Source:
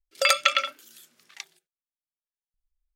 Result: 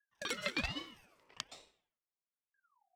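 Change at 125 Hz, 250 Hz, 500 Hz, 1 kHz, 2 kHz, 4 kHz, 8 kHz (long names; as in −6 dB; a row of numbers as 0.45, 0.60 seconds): can't be measured, +14.5 dB, −15.0 dB, −19.5 dB, −14.0 dB, −15.0 dB, −16.5 dB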